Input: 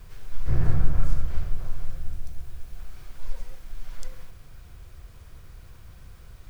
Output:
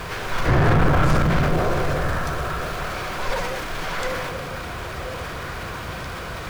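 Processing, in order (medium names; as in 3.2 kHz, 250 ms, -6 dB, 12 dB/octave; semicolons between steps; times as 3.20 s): repeats whose band climbs or falls 503 ms, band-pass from 190 Hz, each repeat 1.4 oct, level -4 dB; overdrive pedal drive 41 dB, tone 1.5 kHz, clips at -4.5 dBFS; transient shaper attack +2 dB, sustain +7 dB; trim -4 dB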